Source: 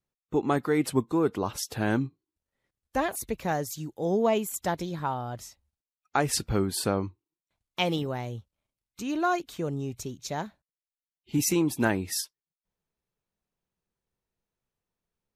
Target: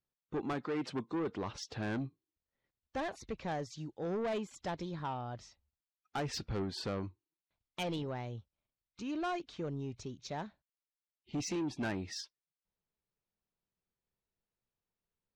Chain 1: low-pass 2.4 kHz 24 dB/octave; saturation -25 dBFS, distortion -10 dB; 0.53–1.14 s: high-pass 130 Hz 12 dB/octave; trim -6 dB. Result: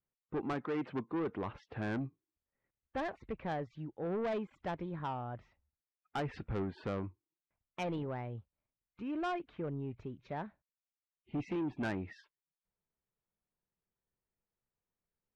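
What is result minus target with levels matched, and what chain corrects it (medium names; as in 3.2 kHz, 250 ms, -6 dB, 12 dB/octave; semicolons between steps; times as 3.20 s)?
4 kHz band -8.5 dB
low-pass 5.5 kHz 24 dB/octave; saturation -25 dBFS, distortion -10 dB; 0.53–1.14 s: high-pass 130 Hz 12 dB/octave; trim -6 dB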